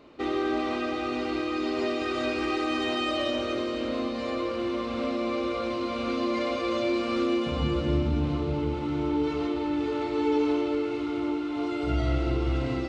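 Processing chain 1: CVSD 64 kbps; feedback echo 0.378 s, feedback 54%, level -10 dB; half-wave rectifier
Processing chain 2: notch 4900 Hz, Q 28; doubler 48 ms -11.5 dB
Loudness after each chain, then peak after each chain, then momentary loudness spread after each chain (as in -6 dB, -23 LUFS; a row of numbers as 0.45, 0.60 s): -32.5, -27.5 LUFS; -15.0, -13.5 dBFS; 3, 4 LU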